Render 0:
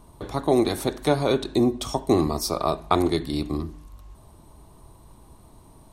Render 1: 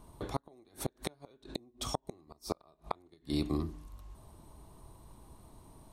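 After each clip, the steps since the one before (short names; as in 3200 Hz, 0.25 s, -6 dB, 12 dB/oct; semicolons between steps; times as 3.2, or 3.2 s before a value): flipped gate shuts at -13 dBFS, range -35 dB; gain -5 dB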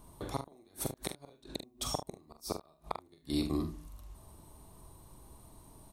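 high shelf 7000 Hz +8.5 dB; on a send: early reflections 44 ms -7 dB, 75 ms -15.5 dB; on the sum: gain -1.5 dB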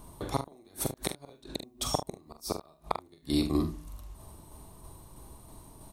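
tremolo saw down 3.1 Hz, depth 35%; gain +6.5 dB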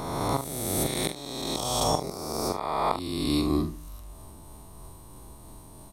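spectral swells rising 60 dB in 1.85 s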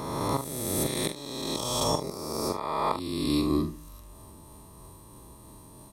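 notch comb 740 Hz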